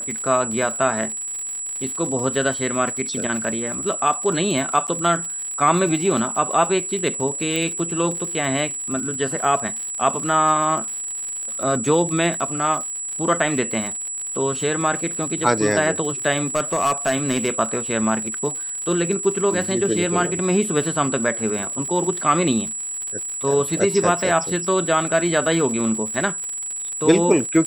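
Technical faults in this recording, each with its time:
surface crackle 97 per second −28 dBFS
whistle 7,800 Hz −26 dBFS
0:04.87–0:04.88: drop-out 8.2 ms
0:07.56: click −10 dBFS
0:16.55–0:17.50: clipping −14 dBFS

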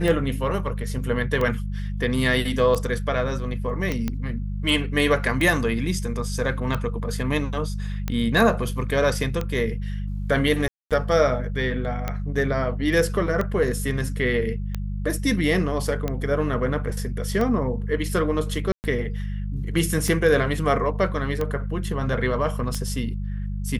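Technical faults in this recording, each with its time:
mains hum 50 Hz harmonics 4 −28 dBFS
scratch tick 45 rpm
0:03.92: click −13 dBFS
0:10.68–0:10.91: drop-out 227 ms
0:18.72–0:18.84: drop-out 119 ms

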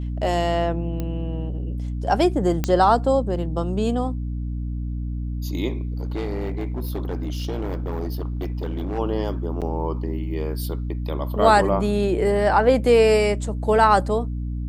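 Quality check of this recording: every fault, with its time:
mains hum 60 Hz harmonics 5 −27 dBFS
0:01.00: click −15 dBFS
0:02.64: click −8 dBFS
0:05.97–0:08.99: clipping −22.5 dBFS
0:09.61–0:09.62: drop-out 7.6 ms

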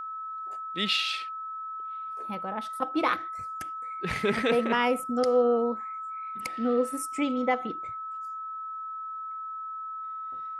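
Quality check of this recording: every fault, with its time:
whistle 1,300 Hz −34 dBFS

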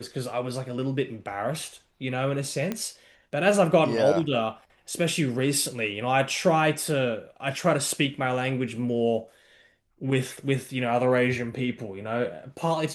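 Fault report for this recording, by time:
0:02.72: click −15 dBFS

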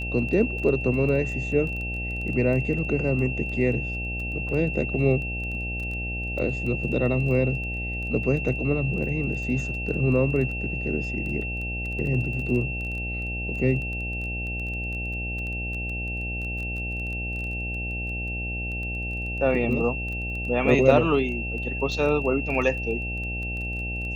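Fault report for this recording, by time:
mains buzz 60 Hz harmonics 14 −32 dBFS
surface crackle 13 per second −32 dBFS
whistle 2,700 Hz −31 dBFS

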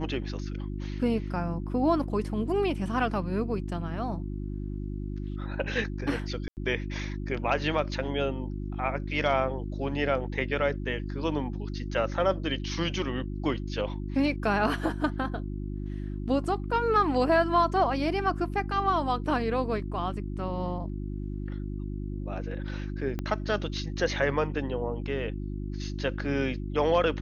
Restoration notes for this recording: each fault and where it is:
mains hum 50 Hz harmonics 7 −34 dBFS
0:06.48–0:06.57: drop-out 89 ms
0:23.19: click −19 dBFS

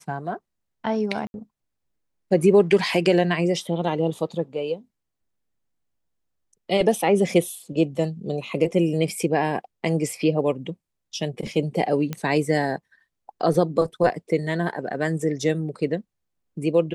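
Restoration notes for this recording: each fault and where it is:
0:01.27–0:01.34: drop-out 71 ms
0:12.13: click −14 dBFS

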